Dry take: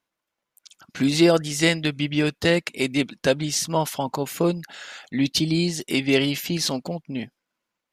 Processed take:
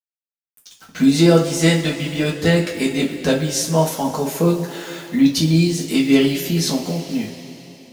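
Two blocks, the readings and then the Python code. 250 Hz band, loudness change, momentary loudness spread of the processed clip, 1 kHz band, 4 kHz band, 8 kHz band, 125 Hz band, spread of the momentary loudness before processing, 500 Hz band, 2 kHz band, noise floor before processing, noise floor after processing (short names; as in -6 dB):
+6.5 dB, +5.0 dB, 11 LU, +3.0 dB, +1.5 dB, +4.0 dB, +7.5 dB, 13 LU, +4.0 dB, +1.0 dB, -84 dBFS, under -85 dBFS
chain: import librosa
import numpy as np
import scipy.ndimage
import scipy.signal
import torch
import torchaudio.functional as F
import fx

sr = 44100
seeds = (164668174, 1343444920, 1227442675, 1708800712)

y = fx.quant_dither(x, sr, seeds[0], bits=8, dither='none')
y = fx.rev_double_slope(y, sr, seeds[1], early_s=0.26, late_s=3.4, knee_db=-19, drr_db=-3.5)
y = fx.dynamic_eq(y, sr, hz=2700.0, q=0.71, threshold_db=-34.0, ratio=4.0, max_db=-5)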